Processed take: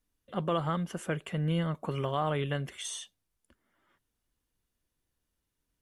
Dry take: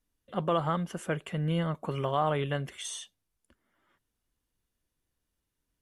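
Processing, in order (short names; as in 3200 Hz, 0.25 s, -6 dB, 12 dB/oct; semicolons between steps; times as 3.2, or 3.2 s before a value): dynamic EQ 800 Hz, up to -4 dB, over -36 dBFS, Q 0.89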